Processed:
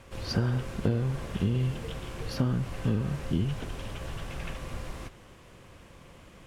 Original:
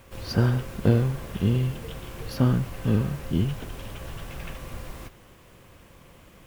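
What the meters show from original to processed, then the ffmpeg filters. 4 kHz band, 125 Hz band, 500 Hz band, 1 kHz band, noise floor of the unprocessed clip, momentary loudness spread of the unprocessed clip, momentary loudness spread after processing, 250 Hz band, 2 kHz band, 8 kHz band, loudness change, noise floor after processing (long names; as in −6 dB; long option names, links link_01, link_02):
−1.0 dB, −4.5 dB, −5.0 dB, −3.5 dB, −52 dBFS, 16 LU, 11 LU, −5.0 dB, −2.5 dB, −2.5 dB, −6.0 dB, −53 dBFS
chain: -af "acompressor=threshold=-23dB:ratio=5,lowpass=9400"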